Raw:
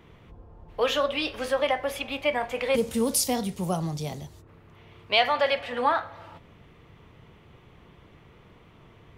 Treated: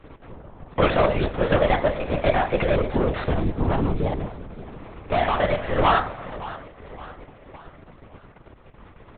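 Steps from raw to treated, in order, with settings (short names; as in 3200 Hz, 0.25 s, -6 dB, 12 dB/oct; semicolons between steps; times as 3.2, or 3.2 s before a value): median filter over 15 samples; HPF 62 Hz 12 dB/oct; expander -48 dBFS; upward compressor, threshold -42 dBFS; sample leveller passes 3; 2.56–5.58 compressor, threshold -18 dBFS, peak gain reduction 4 dB; ring modulator 75 Hz; feedback echo 0.566 s, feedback 49%, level -16 dB; LPC vocoder at 8 kHz whisper; gain +2.5 dB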